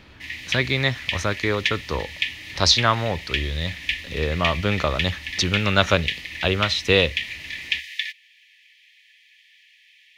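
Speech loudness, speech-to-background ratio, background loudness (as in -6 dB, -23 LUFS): -22.5 LUFS, 6.0 dB, -28.5 LUFS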